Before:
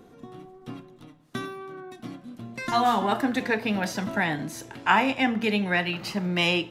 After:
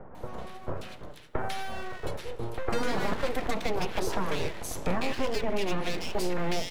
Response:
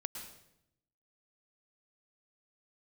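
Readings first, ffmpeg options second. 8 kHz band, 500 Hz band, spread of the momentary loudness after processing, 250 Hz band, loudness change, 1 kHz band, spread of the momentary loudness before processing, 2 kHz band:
+0.5 dB, -1.0 dB, 10 LU, -7.5 dB, -7.5 dB, -8.0 dB, 19 LU, -9.5 dB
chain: -filter_complex "[0:a]acrossover=split=5400[s0][s1];[s0]aeval=exprs='abs(val(0))':c=same[s2];[s2][s1]amix=inputs=2:normalize=0,acompressor=threshold=0.0398:ratio=2,acrossover=split=1600[s3][s4];[s4]adelay=150[s5];[s3][s5]amix=inputs=2:normalize=0,acrossover=split=120|930[s6][s7][s8];[s6]acompressor=threshold=0.0178:ratio=4[s9];[s7]acompressor=threshold=0.0158:ratio=4[s10];[s8]acompressor=threshold=0.00562:ratio=4[s11];[s9][s10][s11]amix=inputs=3:normalize=0,volume=2.51"

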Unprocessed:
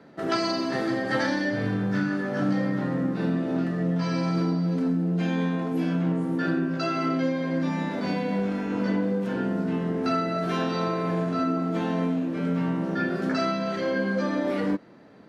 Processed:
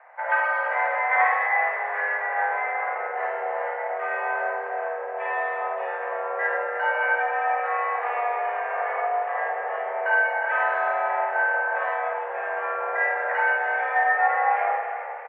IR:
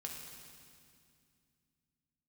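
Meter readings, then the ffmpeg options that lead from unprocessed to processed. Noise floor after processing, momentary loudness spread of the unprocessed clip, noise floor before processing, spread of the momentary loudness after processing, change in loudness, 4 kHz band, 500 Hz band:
-31 dBFS, 2 LU, -32 dBFS, 8 LU, +2.0 dB, under -10 dB, +1.0 dB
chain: -filter_complex "[0:a]asplit=7[s0][s1][s2][s3][s4][s5][s6];[s1]adelay=314,afreqshift=38,volume=0.2[s7];[s2]adelay=628,afreqshift=76,volume=0.12[s8];[s3]adelay=942,afreqshift=114,volume=0.0716[s9];[s4]adelay=1256,afreqshift=152,volume=0.0432[s10];[s5]adelay=1570,afreqshift=190,volume=0.026[s11];[s6]adelay=1884,afreqshift=228,volume=0.0155[s12];[s0][s7][s8][s9][s10][s11][s12]amix=inputs=7:normalize=0,asplit=2[s13][s14];[1:a]atrim=start_sample=2205,adelay=52[s15];[s14][s15]afir=irnorm=-1:irlink=0,volume=1.33[s16];[s13][s16]amix=inputs=2:normalize=0,highpass=f=470:t=q:w=0.5412,highpass=f=470:t=q:w=1.307,lowpass=f=2000:t=q:w=0.5176,lowpass=f=2000:t=q:w=0.7071,lowpass=f=2000:t=q:w=1.932,afreqshift=220,volume=1.68"

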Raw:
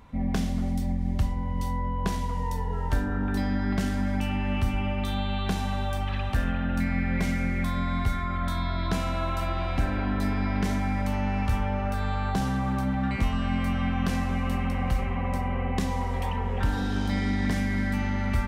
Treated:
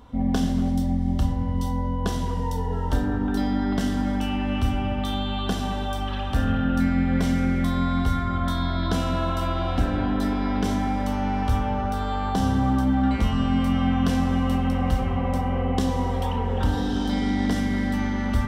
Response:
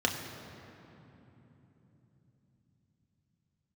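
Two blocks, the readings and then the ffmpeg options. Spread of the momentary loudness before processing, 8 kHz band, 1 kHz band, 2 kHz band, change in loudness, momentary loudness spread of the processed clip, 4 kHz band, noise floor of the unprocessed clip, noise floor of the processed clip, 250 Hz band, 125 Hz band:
3 LU, +2.5 dB, +4.0 dB, -0.5 dB, +3.5 dB, 5 LU, +4.5 dB, -29 dBFS, -27 dBFS, +5.5 dB, +2.5 dB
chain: -filter_complex "[0:a]asplit=2[s0][s1];[1:a]atrim=start_sample=2205,afade=t=out:st=0.42:d=0.01,atrim=end_sample=18963[s2];[s1][s2]afir=irnorm=-1:irlink=0,volume=0.316[s3];[s0][s3]amix=inputs=2:normalize=0"

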